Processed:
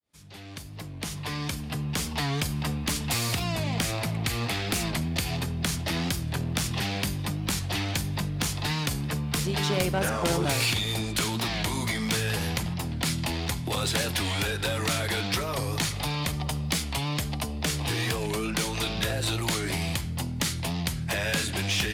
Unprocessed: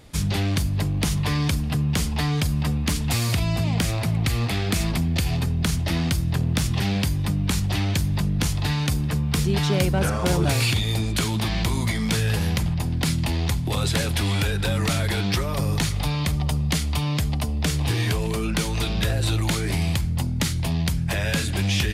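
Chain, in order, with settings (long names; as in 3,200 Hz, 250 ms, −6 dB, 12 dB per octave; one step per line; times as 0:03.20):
fade in at the beginning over 2.36 s
high-pass filter 59 Hz 6 dB per octave
low-shelf EQ 210 Hz −8.5 dB
hum removal 197.7 Hz, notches 27
asymmetric clip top −23.5 dBFS
wow of a warped record 45 rpm, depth 100 cents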